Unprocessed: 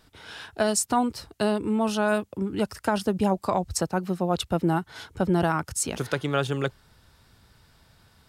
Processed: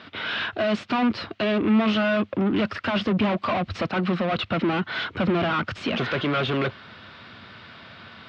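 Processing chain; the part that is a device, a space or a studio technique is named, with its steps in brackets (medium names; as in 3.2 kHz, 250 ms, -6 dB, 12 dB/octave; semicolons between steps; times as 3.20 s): overdrive pedal into a guitar cabinet (overdrive pedal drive 34 dB, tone 4.4 kHz, clips at -9 dBFS; cabinet simulation 90–3500 Hz, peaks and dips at 97 Hz +6 dB, 220 Hz +6 dB, 450 Hz -5 dB, 860 Hz -9 dB, 1.7 kHz -3 dB); trim -5.5 dB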